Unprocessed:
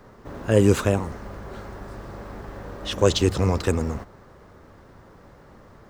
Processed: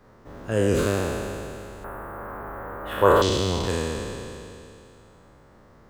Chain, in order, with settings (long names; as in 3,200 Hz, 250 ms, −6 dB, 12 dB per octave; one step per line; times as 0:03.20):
peak hold with a decay on every bin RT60 2.76 s
0:01.84–0:03.22: drawn EQ curve 180 Hz 0 dB, 1,400 Hz +13 dB, 5,800 Hz −23 dB, 12,000 Hz +13 dB
level −7.5 dB